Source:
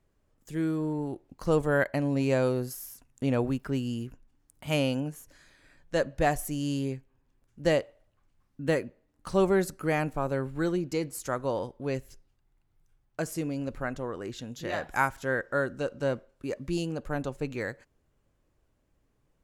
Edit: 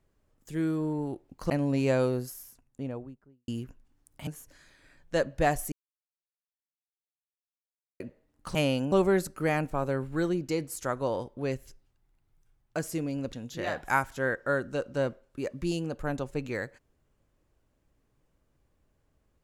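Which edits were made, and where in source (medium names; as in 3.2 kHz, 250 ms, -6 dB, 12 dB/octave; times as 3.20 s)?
1.50–1.93 s: delete
2.45–3.91 s: studio fade out
4.70–5.07 s: move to 9.35 s
6.52–8.80 s: mute
13.76–14.39 s: delete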